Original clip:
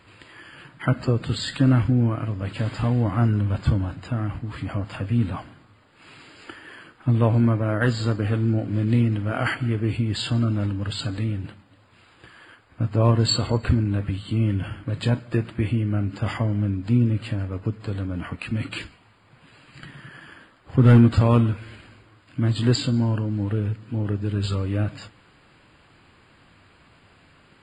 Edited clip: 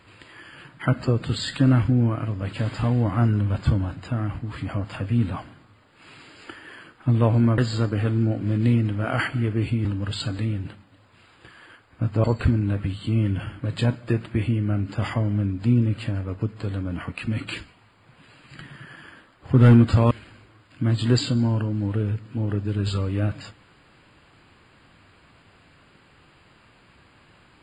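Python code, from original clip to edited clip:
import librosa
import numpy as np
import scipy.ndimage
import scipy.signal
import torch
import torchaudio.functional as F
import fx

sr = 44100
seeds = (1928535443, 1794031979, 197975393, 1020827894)

y = fx.edit(x, sr, fx.cut(start_s=7.58, length_s=0.27),
    fx.cut(start_s=10.12, length_s=0.52),
    fx.cut(start_s=13.03, length_s=0.45),
    fx.cut(start_s=21.35, length_s=0.33), tone=tone)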